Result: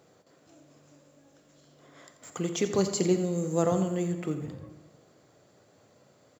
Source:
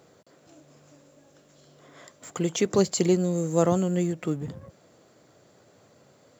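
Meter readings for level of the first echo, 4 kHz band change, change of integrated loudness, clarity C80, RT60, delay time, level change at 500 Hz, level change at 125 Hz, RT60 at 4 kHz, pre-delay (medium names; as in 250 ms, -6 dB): -12.5 dB, -3.5 dB, -3.5 dB, 9.5 dB, 1.3 s, 86 ms, -3.5 dB, -3.5 dB, 0.90 s, 21 ms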